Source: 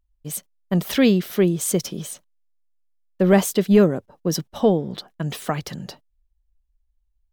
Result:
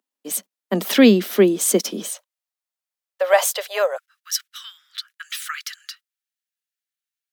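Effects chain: steep high-pass 200 Hz 72 dB/oct, from 2.1 s 510 Hz, from 3.96 s 1300 Hz; gain +5 dB

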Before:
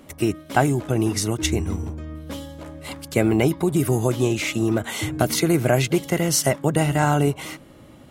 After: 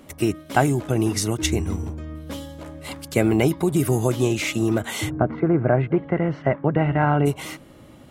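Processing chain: 5.09–7.25 LPF 1400 Hz -> 2500 Hz 24 dB/oct

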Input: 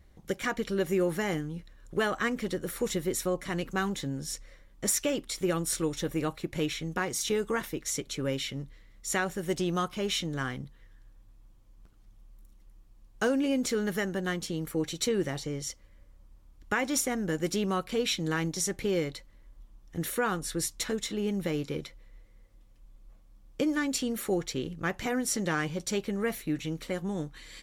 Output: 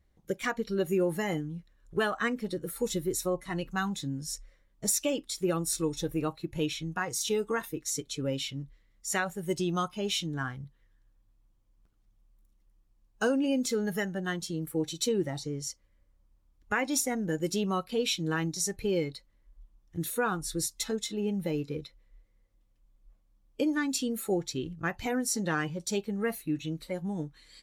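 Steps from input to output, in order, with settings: spectral noise reduction 11 dB

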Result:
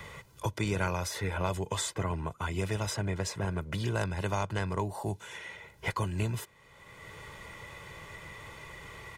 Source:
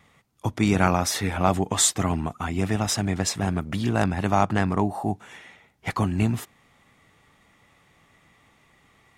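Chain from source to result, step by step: comb 2 ms, depth 68%; three-band squash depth 70%; gain -8.5 dB

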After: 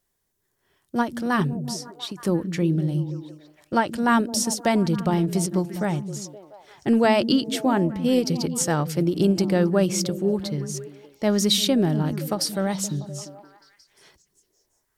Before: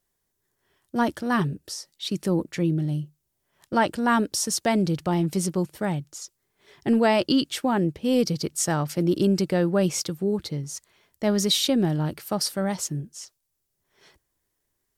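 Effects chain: delay with a stepping band-pass 0.173 s, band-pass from 170 Hz, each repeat 0.7 oct, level -7 dB; ending taper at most 200 dB/s; gain +1.5 dB

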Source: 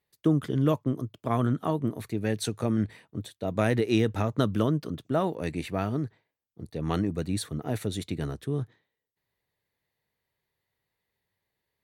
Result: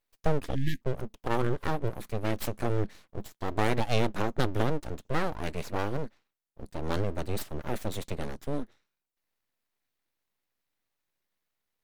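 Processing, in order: full-wave rectifier; spectral delete 0.55–0.82, 360–1600 Hz

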